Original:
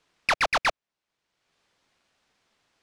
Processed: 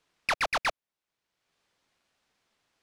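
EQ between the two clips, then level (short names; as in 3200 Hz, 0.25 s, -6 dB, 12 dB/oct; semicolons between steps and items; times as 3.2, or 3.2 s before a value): bell 12000 Hz +5 dB 0.62 oct; -4.5 dB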